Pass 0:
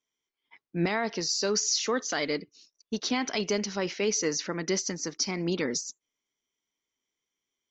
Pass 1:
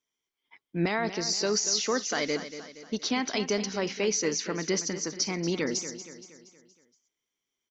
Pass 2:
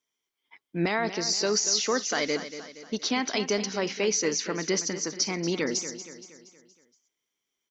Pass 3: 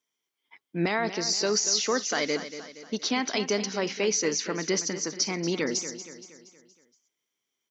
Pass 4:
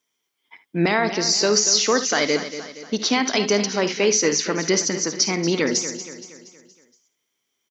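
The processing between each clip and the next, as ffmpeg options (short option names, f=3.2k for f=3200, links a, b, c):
-af "aecho=1:1:235|470|705|940|1175:0.251|0.121|0.0579|0.0278|0.0133"
-af "lowshelf=f=150:g=-6,volume=2dB"
-af "highpass=70"
-af "aecho=1:1:54|73:0.168|0.178,volume=7dB"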